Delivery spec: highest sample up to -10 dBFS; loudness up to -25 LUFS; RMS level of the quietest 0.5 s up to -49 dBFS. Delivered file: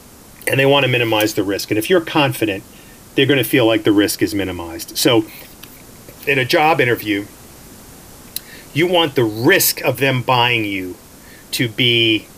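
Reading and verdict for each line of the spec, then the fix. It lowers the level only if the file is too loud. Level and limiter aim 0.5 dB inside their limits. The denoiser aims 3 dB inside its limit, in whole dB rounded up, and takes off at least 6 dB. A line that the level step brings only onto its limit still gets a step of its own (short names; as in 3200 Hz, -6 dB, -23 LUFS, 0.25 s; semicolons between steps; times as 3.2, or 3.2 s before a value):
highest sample -2.5 dBFS: fail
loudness -15.5 LUFS: fail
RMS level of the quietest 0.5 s -41 dBFS: fail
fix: gain -10 dB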